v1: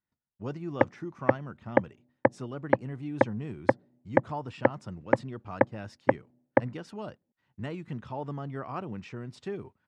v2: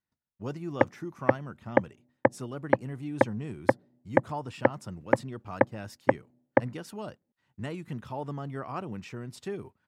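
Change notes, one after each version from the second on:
master: remove distance through air 91 m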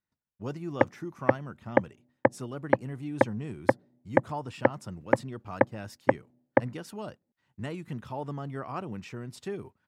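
no change

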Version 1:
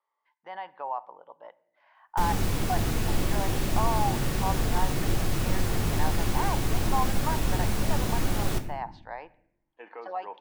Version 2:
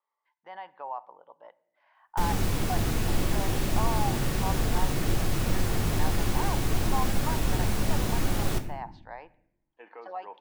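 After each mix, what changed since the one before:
speech -3.5 dB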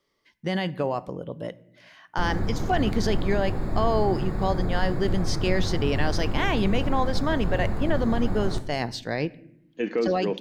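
speech: remove ladder band-pass 960 Hz, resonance 70%; background: add boxcar filter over 15 samples

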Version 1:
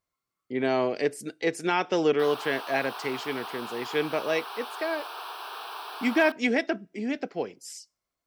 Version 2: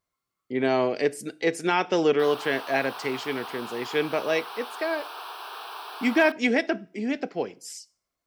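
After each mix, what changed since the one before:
speech: send +11.0 dB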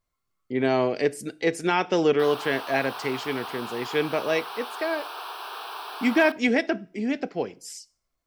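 background: send +10.5 dB; master: remove high-pass 160 Hz 6 dB/octave

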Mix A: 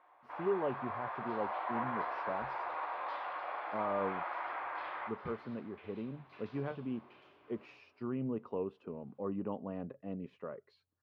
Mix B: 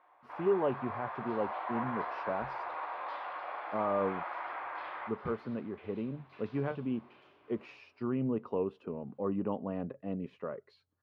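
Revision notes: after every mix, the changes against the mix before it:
speech +4.5 dB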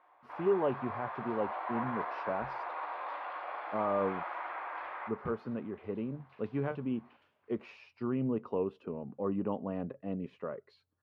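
second sound: send off

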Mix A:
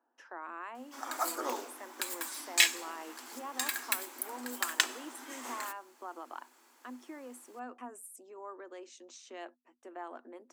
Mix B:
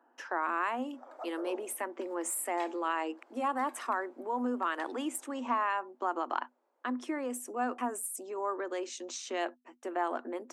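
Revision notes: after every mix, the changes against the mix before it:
speech +11.5 dB; background: add band-pass filter 560 Hz, Q 3.7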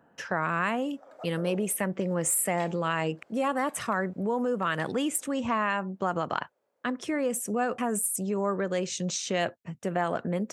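background -6.0 dB; master: remove rippled Chebyshev high-pass 240 Hz, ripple 9 dB

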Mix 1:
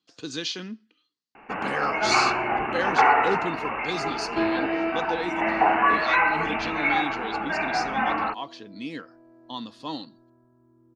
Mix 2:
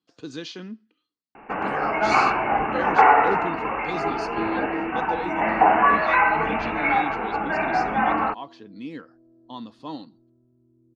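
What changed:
first sound +5.5 dB; second sound: add boxcar filter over 49 samples; master: add treble shelf 2 kHz -10.5 dB

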